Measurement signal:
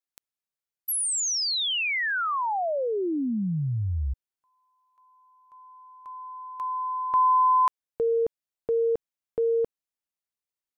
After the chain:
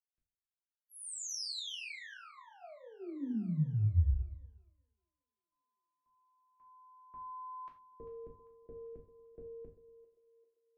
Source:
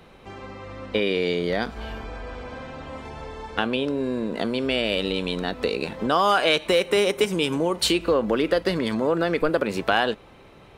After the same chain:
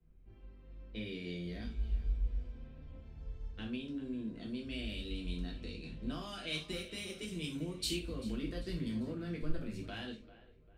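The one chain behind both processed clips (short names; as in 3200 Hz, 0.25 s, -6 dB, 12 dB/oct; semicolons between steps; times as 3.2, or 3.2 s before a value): passive tone stack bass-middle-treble 10-0-1; split-band echo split 380 Hz, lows 0.118 s, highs 0.395 s, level -14.5 dB; dynamic EQ 480 Hz, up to -5 dB, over -57 dBFS, Q 1.2; low-pass opened by the level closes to 1700 Hz, open at -41.5 dBFS; non-linear reverb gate 0.12 s falling, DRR -2 dB; three-band expander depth 40%; gain +1 dB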